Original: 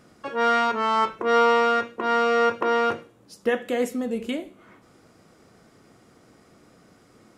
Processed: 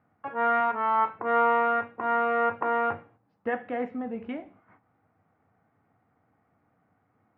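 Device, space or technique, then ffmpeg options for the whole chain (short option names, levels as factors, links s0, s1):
bass cabinet: -filter_complex "[0:a]asettb=1/sr,asplit=3[s0][s1][s2];[s0]atrim=end=0.604[s3];[s1]atrim=start=0.6:end=1.14,asetpts=PTS-STARTPTS,afade=t=in:d=0.004:c=qsin,afade=t=out:st=0.536:d=0.004:c=qsin,highpass=f=200:p=1[s4];[s2]atrim=start=1.136[s5];[s3][s4]acrossfade=d=0.004:c1=hsin:c2=qsin[s6];[s6][s5]acrossfade=d=0.004:c1=qsin:c2=hsin,highpass=80,equalizer=f=96:t=q:w=4:g=9,equalizer=f=210:t=q:w=4:g=-3,equalizer=f=370:t=q:w=4:g=-10,equalizer=f=540:t=q:w=4:g=-5,equalizer=f=790:t=q:w=4:g=8,lowpass=f=2200:w=0.5412,lowpass=f=2200:w=1.3066,agate=range=0.316:threshold=0.00282:ratio=16:detection=peak,equalizer=f=3000:t=o:w=0.77:g=-2,volume=0.668"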